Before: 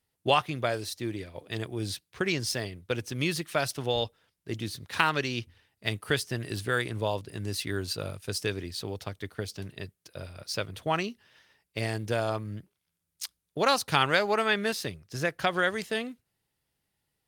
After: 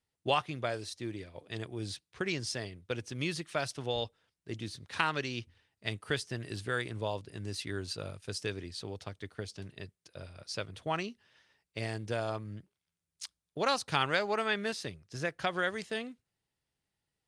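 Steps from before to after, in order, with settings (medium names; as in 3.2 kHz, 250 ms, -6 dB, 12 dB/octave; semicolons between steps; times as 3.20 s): low-pass 9.5 kHz 24 dB/octave; trim -5.5 dB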